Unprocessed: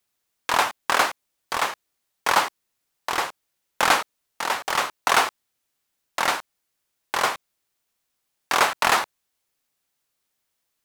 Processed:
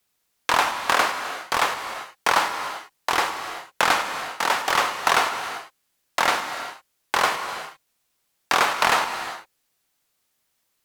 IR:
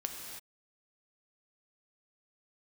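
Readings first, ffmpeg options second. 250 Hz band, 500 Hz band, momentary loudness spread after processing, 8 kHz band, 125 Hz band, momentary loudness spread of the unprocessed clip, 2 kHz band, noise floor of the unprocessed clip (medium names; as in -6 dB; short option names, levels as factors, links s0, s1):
+1.5 dB, +1.5 dB, 13 LU, -0.5 dB, +2.0 dB, 13 LU, +1.5 dB, -78 dBFS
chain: -filter_complex "[0:a]acrossover=split=820|5700[s0][s1][s2];[s0]acompressor=threshold=0.0355:ratio=4[s3];[s1]acompressor=threshold=0.0794:ratio=4[s4];[s2]acompressor=threshold=0.0112:ratio=4[s5];[s3][s4][s5]amix=inputs=3:normalize=0,asplit=2[s6][s7];[1:a]atrim=start_sample=2205,asetrate=36603,aresample=44100[s8];[s7][s8]afir=irnorm=-1:irlink=0,volume=1.06[s9];[s6][s9]amix=inputs=2:normalize=0,volume=0.794"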